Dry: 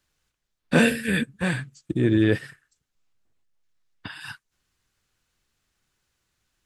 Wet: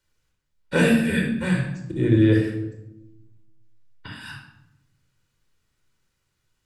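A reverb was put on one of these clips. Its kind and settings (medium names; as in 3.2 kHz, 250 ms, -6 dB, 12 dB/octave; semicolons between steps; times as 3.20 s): simulated room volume 3100 m³, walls furnished, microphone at 4.7 m; trim -4.5 dB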